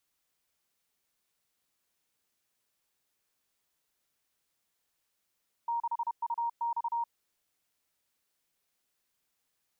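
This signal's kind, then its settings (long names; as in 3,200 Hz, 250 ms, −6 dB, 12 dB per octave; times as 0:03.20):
Morse code "6UX" 31 words per minute 936 Hz −28.5 dBFS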